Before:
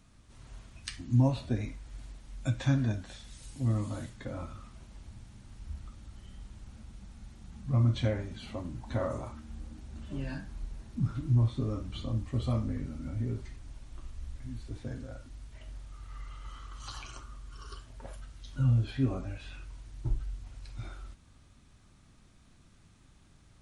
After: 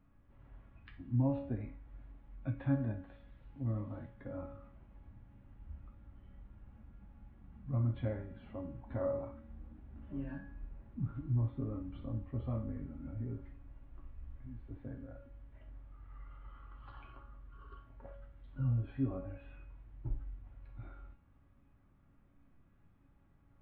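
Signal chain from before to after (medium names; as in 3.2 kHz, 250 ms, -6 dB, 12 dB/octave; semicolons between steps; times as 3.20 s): Gaussian low-pass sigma 4.1 samples; feedback comb 280 Hz, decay 0.61 s, harmonics all, mix 80%; trim +6 dB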